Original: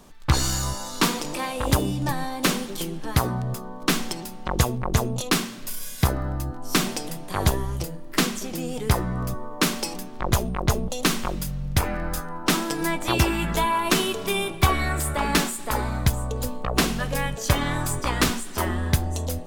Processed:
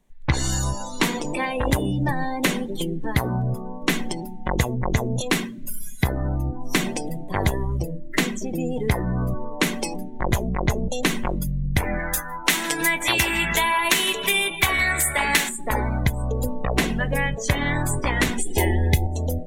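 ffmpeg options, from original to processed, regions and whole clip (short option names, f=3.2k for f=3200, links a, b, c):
-filter_complex "[0:a]asettb=1/sr,asplit=3[a][b][c];[a]atrim=end=11.994[d];[b]atrim=start=11.99:end=15.49,asetpts=PTS-STARTPTS,afade=t=in:d=0.004:c=qsin,afade=t=out:st=3.496:d=0.004:c=qsin,tiltshelf=f=800:g=-7,aecho=1:1:159|318|477|636|795|954:0.133|0.08|0.048|0.0288|0.0173|0.0104,atrim=end_sample=154350[e];[c]atrim=start=15.486[f];[d][e]acrossfade=d=0.004:c1=hsin:c2=qsin[g];[g][f]acrossfade=d=0.004:c1=qsin:c2=hsin,asettb=1/sr,asplit=3[h][i][j];[h]atrim=end=18.384[k];[i]atrim=start=18.38:end=19.07,asetpts=PTS-STARTPTS,afade=t=in:d=0.004:c=qsin,afade=t=out:st=0.686:d=0.004:c=qsin,asuperstop=centerf=1300:order=4:qfactor=1.2,aecho=1:1:2.4:0.46,atrim=end_sample=30429,acontrast=35[l];[j]atrim=start=19.066[m];[k][l]acrossfade=d=0.004:c1=hsin:c2=qsin[n];[n][m]acrossfade=d=0.004:c1=qsin:c2=hsin,afftdn=nr=24:nf=-34,equalizer=f=1.25k:t=o:w=0.33:g=-9,equalizer=f=2k:t=o:w=0.33:g=8,equalizer=f=5k:t=o:w=0.33:g=-9,acompressor=threshold=-24dB:ratio=2.5,volume=5dB"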